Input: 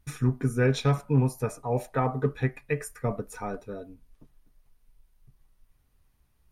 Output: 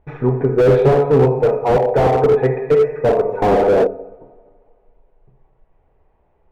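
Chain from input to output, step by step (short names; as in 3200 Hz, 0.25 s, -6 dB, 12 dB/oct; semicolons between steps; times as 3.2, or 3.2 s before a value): two-slope reverb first 0.94 s, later 2.5 s, DRR 2.5 dB; 3.42–3.87 sample leveller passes 3; LPF 2400 Hz 24 dB/oct; band shelf 560 Hz +14 dB; slew limiter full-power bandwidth 92 Hz; gain +4.5 dB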